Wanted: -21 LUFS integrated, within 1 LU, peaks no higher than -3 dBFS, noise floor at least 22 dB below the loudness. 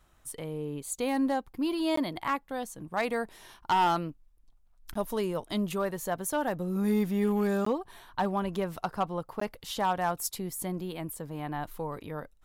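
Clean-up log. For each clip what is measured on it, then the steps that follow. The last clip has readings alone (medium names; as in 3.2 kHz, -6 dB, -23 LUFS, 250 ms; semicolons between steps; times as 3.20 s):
clipped samples 0.6%; clipping level -20.0 dBFS; dropouts 4; longest dropout 14 ms; loudness -31.5 LUFS; peak level -20.0 dBFS; loudness target -21.0 LUFS
-> clip repair -20 dBFS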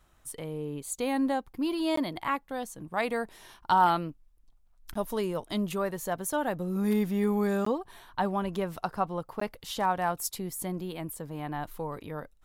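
clipped samples 0.0%; dropouts 4; longest dropout 14 ms
-> interpolate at 1.96/4.94/7.65/9.40 s, 14 ms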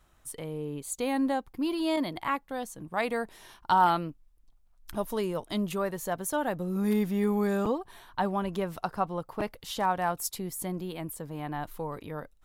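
dropouts 0; loudness -31.0 LUFS; peak level -11.5 dBFS; loudness target -21.0 LUFS
-> trim +10 dB; peak limiter -3 dBFS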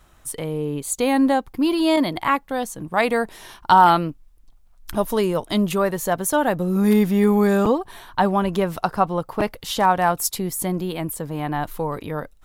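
loudness -21.0 LUFS; peak level -3.0 dBFS; noise floor -52 dBFS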